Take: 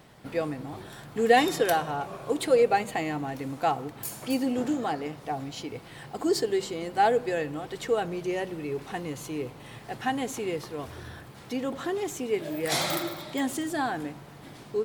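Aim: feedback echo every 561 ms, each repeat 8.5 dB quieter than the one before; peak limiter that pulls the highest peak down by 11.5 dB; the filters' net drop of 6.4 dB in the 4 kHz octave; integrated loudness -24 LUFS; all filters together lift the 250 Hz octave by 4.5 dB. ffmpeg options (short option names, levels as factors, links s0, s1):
-af "equalizer=f=250:t=o:g=5.5,equalizer=f=4000:t=o:g=-8.5,alimiter=limit=0.133:level=0:latency=1,aecho=1:1:561|1122|1683|2244:0.376|0.143|0.0543|0.0206,volume=1.78"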